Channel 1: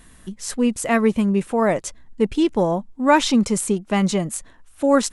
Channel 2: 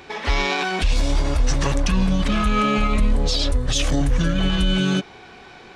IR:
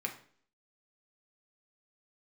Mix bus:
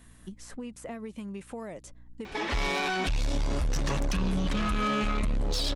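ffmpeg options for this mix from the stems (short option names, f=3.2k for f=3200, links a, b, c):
-filter_complex "[0:a]acrossover=split=750|2200[a][b][c];[a]acompressor=threshold=-28dB:ratio=4[d];[b]acompressor=threshold=-43dB:ratio=4[e];[c]acompressor=threshold=-43dB:ratio=4[f];[d][e][f]amix=inputs=3:normalize=0,aeval=exprs='val(0)+0.00447*(sin(2*PI*60*n/s)+sin(2*PI*2*60*n/s)/2+sin(2*PI*3*60*n/s)/3+sin(2*PI*4*60*n/s)/4+sin(2*PI*5*60*n/s)/5)':c=same,acompressor=threshold=-27dB:ratio=6,volume=-7.5dB[g];[1:a]adelay=2250,volume=-1dB[h];[g][h]amix=inputs=2:normalize=0,asoftclip=type=tanh:threshold=-20dB,alimiter=limit=-23.5dB:level=0:latency=1"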